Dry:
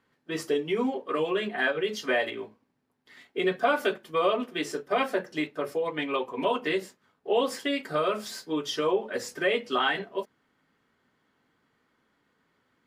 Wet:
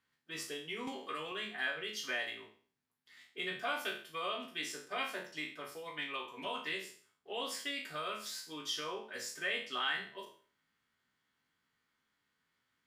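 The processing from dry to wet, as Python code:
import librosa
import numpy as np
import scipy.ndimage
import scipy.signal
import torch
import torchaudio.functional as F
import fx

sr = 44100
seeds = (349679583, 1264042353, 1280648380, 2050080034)

y = fx.spec_trails(x, sr, decay_s=0.46)
y = fx.tone_stack(y, sr, knobs='5-5-5')
y = fx.band_squash(y, sr, depth_pct=100, at=(0.87, 1.32))
y = y * librosa.db_to_amplitude(1.0)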